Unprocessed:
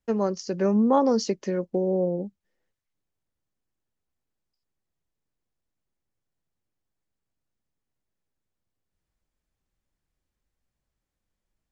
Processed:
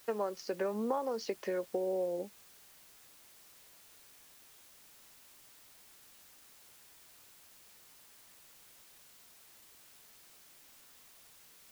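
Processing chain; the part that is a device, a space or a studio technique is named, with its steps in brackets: baby monitor (BPF 490–3400 Hz; compressor, threshold -32 dBFS, peak gain reduction 14 dB; white noise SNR 17 dB); gain +1 dB

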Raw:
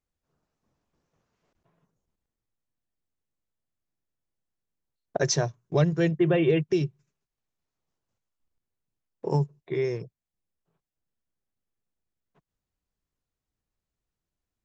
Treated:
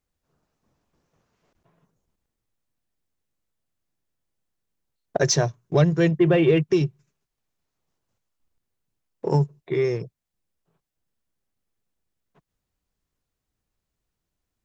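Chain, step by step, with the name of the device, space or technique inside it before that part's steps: parallel distortion (in parallel at -13 dB: hard clip -27.5 dBFS, distortion -6 dB); on the sum: gain +3.5 dB

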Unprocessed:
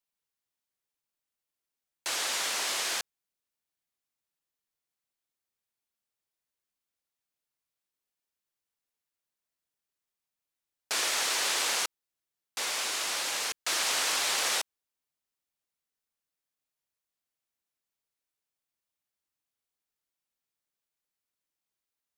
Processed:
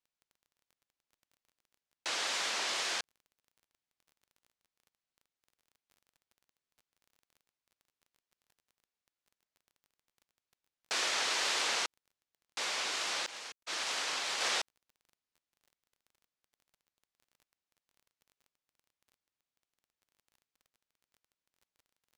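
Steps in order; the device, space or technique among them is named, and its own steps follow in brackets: 13.26–14.41 expander -24 dBFS; lo-fi chain (LPF 6200 Hz 12 dB/oct; wow and flutter; crackle 22/s -50 dBFS); gain -2 dB

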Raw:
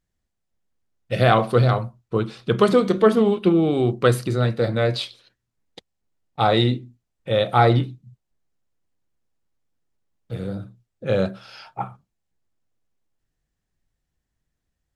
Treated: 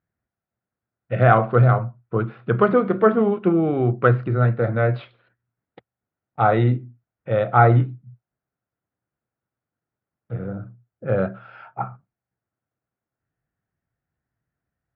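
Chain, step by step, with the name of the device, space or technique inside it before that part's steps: bass cabinet (speaker cabinet 83–2200 Hz, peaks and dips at 120 Hz +6 dB, 690 Hz +4 dB, 1400 Hz +7 dB); 10.33–11.18 LPF 2100 Hz 6 dB/oct; gain -1.5 dB

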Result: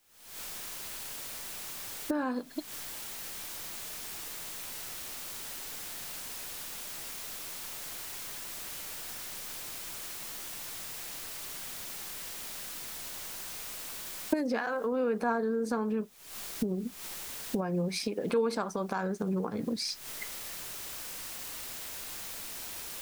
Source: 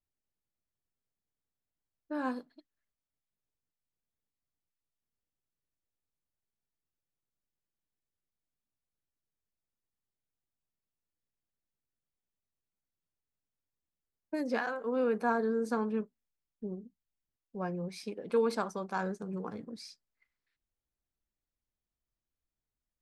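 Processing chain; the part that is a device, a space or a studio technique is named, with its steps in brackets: cheap recorder with automatic gain (white noise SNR 31 dB; recorder AGC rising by 77 dB/s)

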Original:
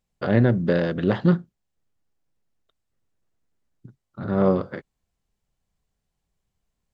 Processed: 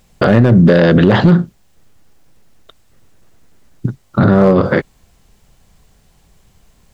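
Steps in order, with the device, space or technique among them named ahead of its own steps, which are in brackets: loud club master (compressor 3:1, threshold -22 dBFS, peak gain reduction 7.5 dB; hard clip -17 dBFS, distortion -20 dB; maximiser +28 dB); gain -1 dB

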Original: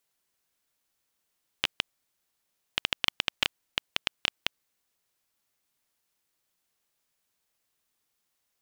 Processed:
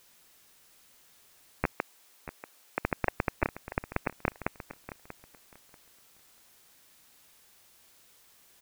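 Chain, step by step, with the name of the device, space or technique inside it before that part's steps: scrambled radio voice (BPF 310–3100 Hz; inverted band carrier 2900 Hz; white noise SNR 19 dB); 1.72–2.84 HPF 320 Hz 12 dB/oct; feedback echo 0.638 s, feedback 22%, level -13.5 dB; gain +2 dB

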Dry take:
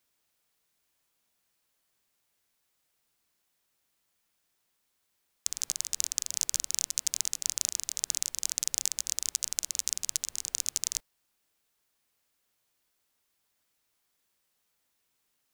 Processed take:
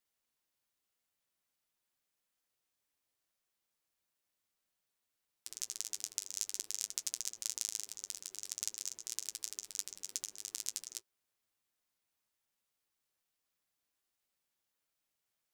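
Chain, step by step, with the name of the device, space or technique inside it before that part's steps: alien voice (ring modulator 380 Hz; flange 0.55 Hz, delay 8.8 ms, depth 1.4 ms, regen -39%); gain -2.5 dB

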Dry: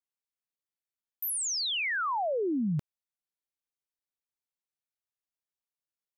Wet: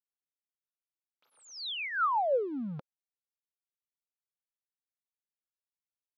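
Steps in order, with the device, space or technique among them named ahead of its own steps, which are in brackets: high shelf 4500 Hz +3.5 dB; blown loudspeaker (crossover distortion -55 dBFS; speaker cabinet 230–3700 Hz, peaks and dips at 340 Hz -6 dB, 530 Hz +8 dB, 860 Hz +5 dB, 1300 Hz +8 dB, 1900 Hz -7 dB, 2900 Hz -4 dB); gain -2.5 dB

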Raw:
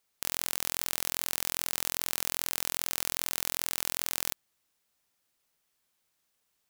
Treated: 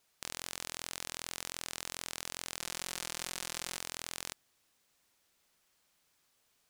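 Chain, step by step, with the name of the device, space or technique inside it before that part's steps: 2.59–3.77 comb 5.6 ms, depth 31%; compact cassette (soft clip -12.5 dBFS, distortion -14 dB; LPF 9100 Hz 12 dB/oct; wow and flutter; white noise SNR 33 dB); gain +3.5 dB

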